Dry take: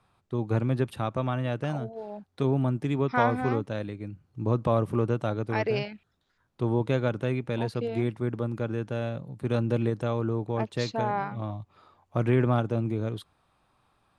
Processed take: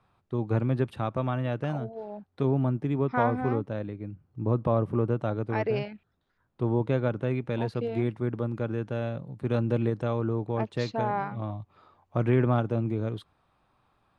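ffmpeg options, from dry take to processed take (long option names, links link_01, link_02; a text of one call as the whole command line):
ffmpeg -i in.wav -af "asetnsamples=nb_out_samples=441:pad=0,asendcmd='2.04 lowpass f 2000;2.81 lowpass f 1300;5.19 lowpass f 1800;7.31 lowpass f 3200',lowpass=frequency=2900:poles=1" out.wav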